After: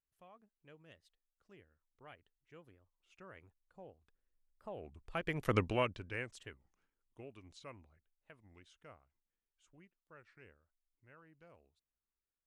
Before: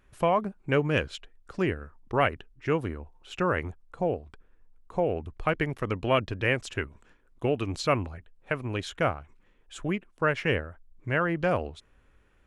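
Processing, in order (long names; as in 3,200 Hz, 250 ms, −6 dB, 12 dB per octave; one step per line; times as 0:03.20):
source passing by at 0:05.55, 20 m/s, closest 1.9 metres
high-shelf EQ 3,100 Hz +6.5 dB
wow of a warped record 33 1/3 rpm, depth 250 cents
level −1 dB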